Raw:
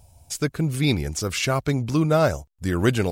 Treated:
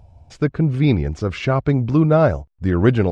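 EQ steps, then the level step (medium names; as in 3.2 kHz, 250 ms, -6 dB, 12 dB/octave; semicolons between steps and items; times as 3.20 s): tape spacing loss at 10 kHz 35 dB; +6.5 dB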